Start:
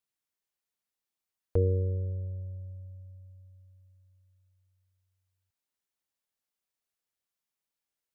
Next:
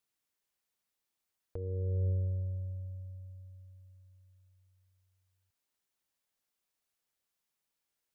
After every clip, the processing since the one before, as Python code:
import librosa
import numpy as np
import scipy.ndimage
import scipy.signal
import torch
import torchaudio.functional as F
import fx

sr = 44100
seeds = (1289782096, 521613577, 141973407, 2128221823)

y = fx.over_compress(x, sr, threshold_db=-32.0, ratio=-1.0)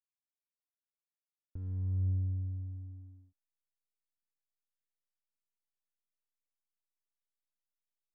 y = fx.backlash(x, sr, play_db=-38.5)
y = fx.curve_eq(y, sr, hz=(280.0, 440.0, 780.0), db=(0, -21, -17))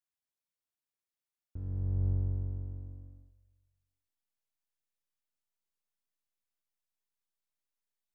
y = fx.octave_divider(x, sr, octaves=1, level_db=-5.0)
y = fx.echo_feedback(y, sr, ms=195, feedback_pct=44, wet_db=-17.0)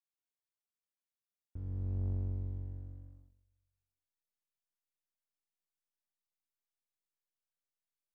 y = fx.leveller(x, sr, passes=1)
y = F.gain(torch.from_numpy(y), -6.0).numpy()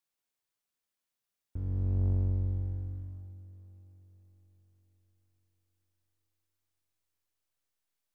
y = fx.echo_diffused(x, sr, ms=512, feedback_pct=50, wet_db=-15.5)
y = F.gain(torch.from_numpy(y), 6.5).numpy()